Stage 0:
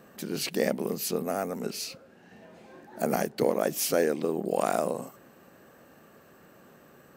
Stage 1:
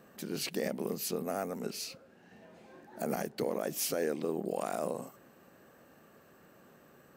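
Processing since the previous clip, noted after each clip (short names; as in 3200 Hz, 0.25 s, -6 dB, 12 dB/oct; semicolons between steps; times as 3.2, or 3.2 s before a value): limiter -17 dBFS, peak gain reduction 6 dB; gain -4.5 dB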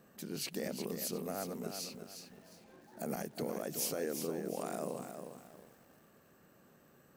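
tone controls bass +4 dB, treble +4 dB; lo-fi delay 0.358 s, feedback 35%, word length 9-bit, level -7 dB; gain -6 dB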